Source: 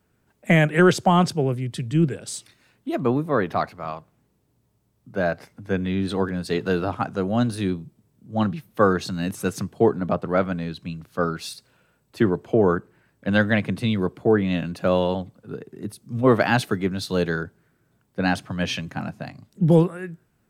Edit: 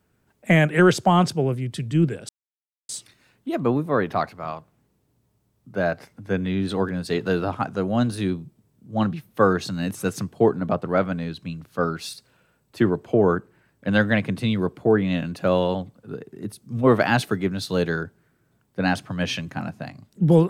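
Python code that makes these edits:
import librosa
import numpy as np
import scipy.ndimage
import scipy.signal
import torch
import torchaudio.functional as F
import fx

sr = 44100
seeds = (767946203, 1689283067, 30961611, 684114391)

y = fx.edit(x, sr, fx.insert_silence(at_s=2.29, length_s=0.6), tone=tone)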